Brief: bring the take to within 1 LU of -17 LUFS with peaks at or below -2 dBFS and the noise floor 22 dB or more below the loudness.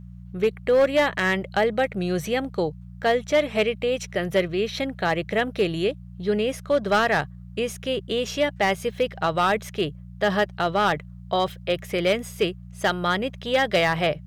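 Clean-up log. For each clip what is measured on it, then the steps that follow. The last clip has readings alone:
clipped 0.6%; flat tops at -13.5 dBFS; hum 60 Hz; harmonics up to 180 Hz; hum level -39 dBFS; loudness -24.0 LUFS; peak -13.5 dBFS; loudness target -17.0 LUFS
-> clip repair -13.5 dBFS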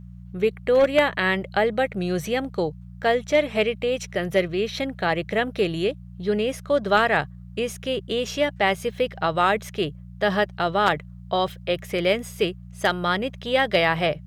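clipped 0.0%; hum 60 Hz; harmonics up to 180 Hz; hum level -39 dBFS
-> de-hum 60 Hz, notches 3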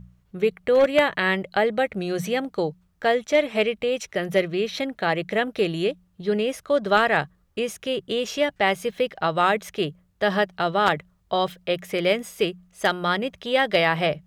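hum none; loudness -23.5 LUFS; peak -4.5 dBFS; loudness target -17.0 LUFS
-> gain +6.5 dB; limiter -2 dBFS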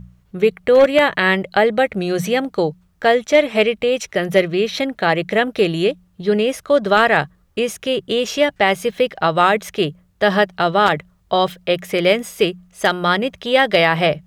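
loudness -17.5 LUFS; peak -2.0 dBFS; noise floor -57 dBFS

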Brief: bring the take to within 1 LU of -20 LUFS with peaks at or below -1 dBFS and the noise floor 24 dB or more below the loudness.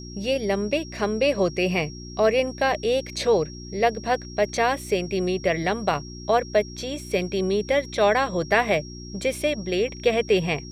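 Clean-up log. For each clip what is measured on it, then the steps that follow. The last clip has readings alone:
hum 60 Hz; harmonics up to 360 Hz; hum level -36 dBFS; steady tone 5600 Hz; tone level -42 dBFS; loudness -24.0 LUFS; peak -6.5 dBFS; loudness target -20.0 LUFS
-> de-hum 60 Hz, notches 6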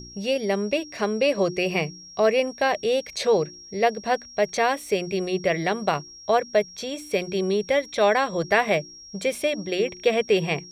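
hum none; steady tone 5600 Hz; tone level -42 dBFS
-> notch 5600 Hz, Q 30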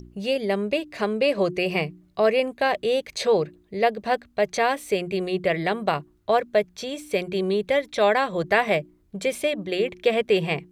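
steady tone none; loudness -24.0 LUFS; peak -6.5 dBFS; loudness target -20.0 LUFS
-> gain +4 dB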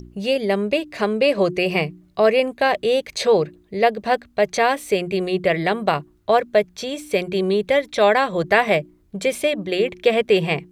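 loudness -20.0 LUFS; peak -2.5 dBFS; noise floor -56 dBFS

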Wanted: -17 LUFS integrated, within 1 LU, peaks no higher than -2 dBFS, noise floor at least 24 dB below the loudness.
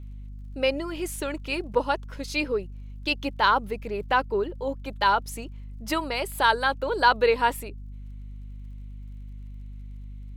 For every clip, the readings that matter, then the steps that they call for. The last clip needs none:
ticks 26/s; hum 50 Hz; harmonics up to 250 Hz; hum level -36 dBFS; loudness -25.5 LUFS; peak -7.5 dBFS; loudness target -17.0 LUFS
-> de-click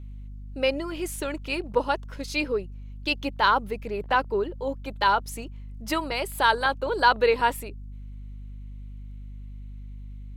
ticks 0.19/s; hum 50 Hz; harmonics up to 250 Hz; hum level -36 dBFS
-> de-hum 50 Hz, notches 5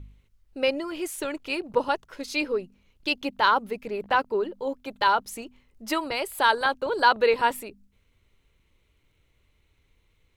hum none; loudness -26.0 LUFS; peak -7.0 dBFS; loudness target -17.0 LUFS
-> gain +9 dB; limiter -2 dBFS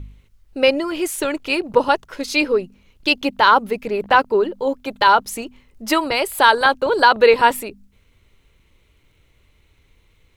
loudness -17.5 LUFS; peak -2.0 dBFS; noise floor -59 dBFS

